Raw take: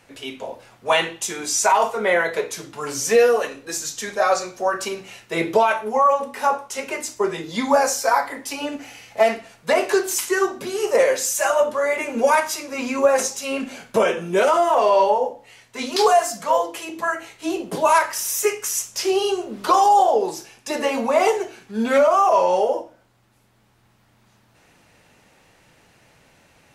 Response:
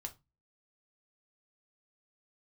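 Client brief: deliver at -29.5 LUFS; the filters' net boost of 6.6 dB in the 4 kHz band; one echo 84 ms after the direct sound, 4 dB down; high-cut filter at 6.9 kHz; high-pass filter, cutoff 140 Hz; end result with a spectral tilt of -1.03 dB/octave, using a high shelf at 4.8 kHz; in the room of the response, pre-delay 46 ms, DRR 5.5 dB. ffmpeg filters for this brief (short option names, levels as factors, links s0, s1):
-filter_complex "[0:a]highpass=140,lowpass=6900,equalizer=f=4000:t=o:g=7.5,highshelf=f=4800:g=4,aecho=1:1:84:0.631,asplit=2[s0][s1];[1:a]atrim=start_sample=2205,adelay=46[s2];[s1][s2]afir=irnorm=-1:irlink=0,volume=0.794[s3];[s0][s3]amix=inputs=2:normalize=0,volume=0.237"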